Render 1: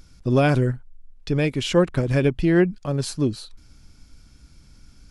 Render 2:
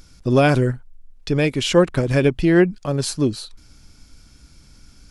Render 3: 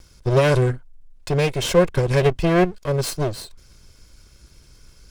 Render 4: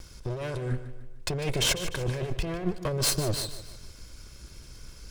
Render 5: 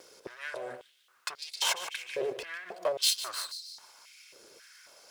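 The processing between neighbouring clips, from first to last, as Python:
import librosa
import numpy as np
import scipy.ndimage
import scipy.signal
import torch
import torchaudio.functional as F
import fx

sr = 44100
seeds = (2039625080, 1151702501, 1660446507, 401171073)

y1 = fx.bass_treble(x, sr, bass_db=-3, treble_db=2)
y1 = y1 * 10.0 ** (4.0 / 20.0)
y2 = fx.lower_of_two(y1, sr, delay_ms=1.9)
y3 = fx.over_compress(y2, sr, threshold_db=-26.0, ratio=-1.0)
y3 = fx.echo_feedback(y3, sr, ms=150, feedback_pct=43, wet_db=-12.5)
y3 = y3 * 10.0 ** (-3.5 / 20.0)
y4 = fx.dmg_noise_colour(y3, sr, seeds[0], colour='pink', level_db=-66.0)
y4 = fx.filter_held_highpass(y4, sr, hz=3.7, low_hz=460.0, high_hz=4500.0)
y4 = y4 * 10.0 ** (-4.0 / 20.0)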